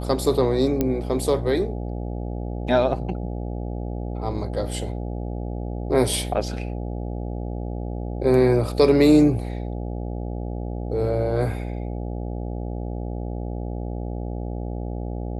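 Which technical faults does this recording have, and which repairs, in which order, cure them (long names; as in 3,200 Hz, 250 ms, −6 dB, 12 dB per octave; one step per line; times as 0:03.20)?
mains buzz 60 Hz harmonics 14 −29 dBFS
0:00.81: click −9 dBFS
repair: click removal
hum removal 60 Hz, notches 14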